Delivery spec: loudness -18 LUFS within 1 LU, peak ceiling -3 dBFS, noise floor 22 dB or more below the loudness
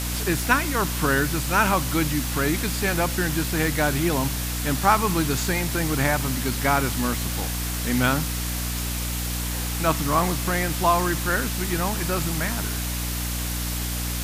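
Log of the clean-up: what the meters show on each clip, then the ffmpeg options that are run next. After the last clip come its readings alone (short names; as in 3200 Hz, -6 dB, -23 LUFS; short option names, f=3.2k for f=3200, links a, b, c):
hum 60 Hz; harmonics up to 300 Hz; hum level -27 dBFS; noise floor -28 dBFS; noise floor target -46 dBFS; loudness -23.5 LUFS; peak -5.0 dBFS; loudness target -18.0 LUFS
-> -af "bandreject=f=60:t=h:w=4,bandreject=f=120:t=h:w=4,bandreject=f=180:t=h:w=4,bandreject=f=240:t=h:w=4,bandreject=f=300:t=h:w=4"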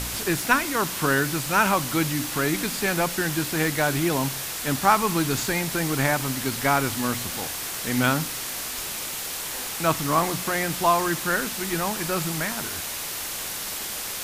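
hum none; noise floor -32 dBFS; noise floor target -47 dBFS
-> -af "afftdn=nr=15:nf=-32"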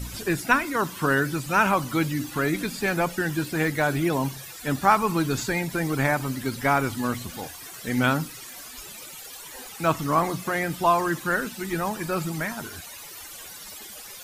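noise floor -42 dBFS; noise floor target -47 dBFS
-> -af "afftdn=nr=6:nf=-42"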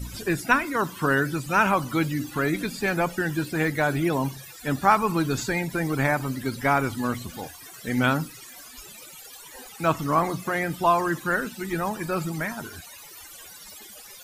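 noise floor -45 dBFS; noise floor target -47 dBFS
-> -af "afftdn=nr=6:nf=-45"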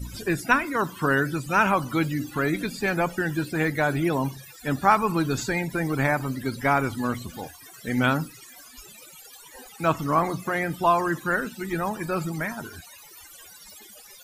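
noise floor -48 dBFS; loudness -25.0 LUFS; peak -6.0 dBFS; loudness target -18.0 LUFS
-> -af "volume=7dB,alimiter=limit=-3dB:level=0:latency=1"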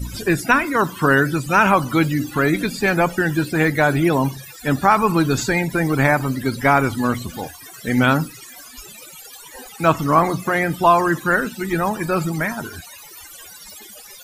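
loudness -18.5 LUFS; peak -3.0 dBFS; noise floor -41 dBFS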